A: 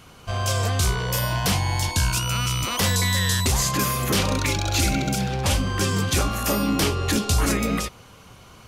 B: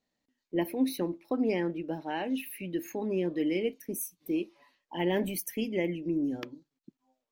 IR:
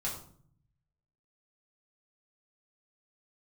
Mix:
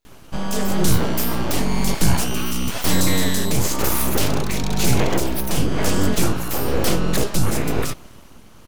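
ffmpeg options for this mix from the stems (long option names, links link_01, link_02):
-filter_complex "[0:a]lowshelf=frequency=410:gain=10.5,adelay=50,volume=-0.5dB[link_01];[1:a]acontrast=73,volume=-3.5dB,asplit=2[link_02][link_03];[link_03]volume=-9dB[link_04];[2:a]atrim=start_sample=2205[link_05];[link_04][link_05]afir=irnorm=-1:irlink=0[link_06];[link_01][link_02][link_06]amix=inputs=3:normalize=0,highshelf=frequency=9700:gain=9.5,aeval=exprs='abs(val(0))':channel_layout=same,tremolo=f=1:d=0.35"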